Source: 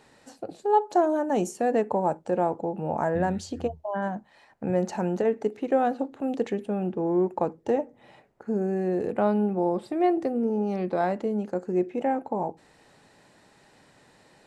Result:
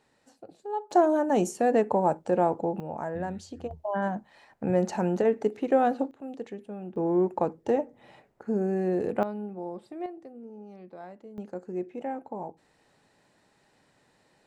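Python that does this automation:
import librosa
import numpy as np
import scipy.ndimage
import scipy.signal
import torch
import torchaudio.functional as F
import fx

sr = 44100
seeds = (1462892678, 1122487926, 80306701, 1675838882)

y = fx.gain(x, sr, db=fx.steps((0.0, -11.0), (0.91, 1.0), (2.8, -7.5), (3.71, 0.5), (6.11, -10.5), (6.96, -0.5), (9.23, -11.5), (10.06, -18.5), (11.38, -8.0)))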